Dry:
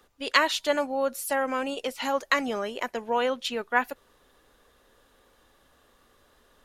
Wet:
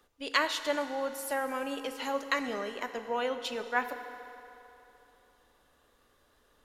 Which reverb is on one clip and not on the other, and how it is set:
feedback delay network reverb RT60 3.1 s, low-frequency decay 0.7×, high-frequency decay 0.8×, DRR 8 dB
level −6 dB

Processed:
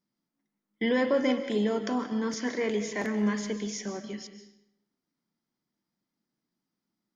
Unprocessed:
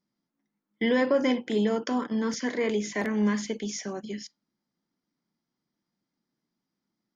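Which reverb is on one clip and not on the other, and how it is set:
comb and all-pass reverb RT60 0.81 s, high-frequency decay 0.85×, pre-delay 100 ms, DRR 9.5 dB
level −2 dB

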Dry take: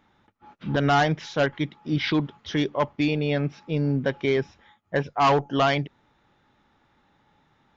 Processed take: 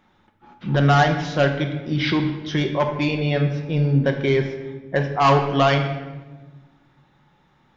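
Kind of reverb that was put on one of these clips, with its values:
rectangular room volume 820 cubic metres, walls mixed, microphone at 0.98 metres
level +2 dB

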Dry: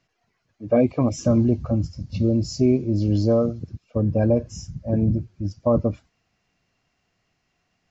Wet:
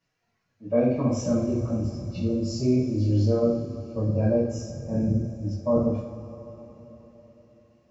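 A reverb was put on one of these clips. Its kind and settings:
coupled-rooms reverb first 0.56 s, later 4.5 s, from −18 dB, DRR −9 dB
level −12.5 dB

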